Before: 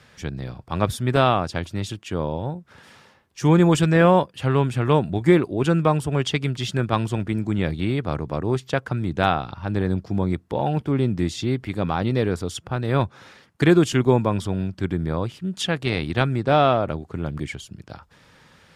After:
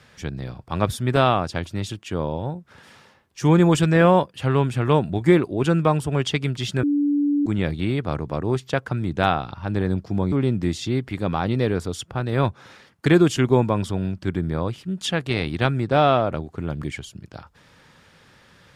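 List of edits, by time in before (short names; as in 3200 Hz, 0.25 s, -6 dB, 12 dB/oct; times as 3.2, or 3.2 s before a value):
6.83–7.46 bleep 289 Hz -17 dBFS
10.32–10.88 cut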